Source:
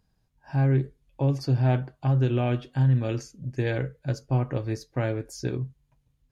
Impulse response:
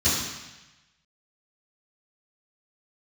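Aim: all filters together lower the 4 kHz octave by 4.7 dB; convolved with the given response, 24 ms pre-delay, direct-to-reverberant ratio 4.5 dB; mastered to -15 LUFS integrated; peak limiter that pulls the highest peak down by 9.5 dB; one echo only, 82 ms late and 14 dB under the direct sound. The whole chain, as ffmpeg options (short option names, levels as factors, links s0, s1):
-filter_complex "[0:a]equalizer=f=4000:t=o:g=-6.5,alimiter=limit=0.0631:level=0:latency=1,aecho=1:1:82:0.2,asplit=2[s0][s1];[1:a]atrim=start_sample=2205,adelay=24[s2];[s1][s2]afir=irnorm=-1:irlink=0,volume=0.112[s3];[s0][s3]amix=inputs=2:normalize=0,volume=5.62"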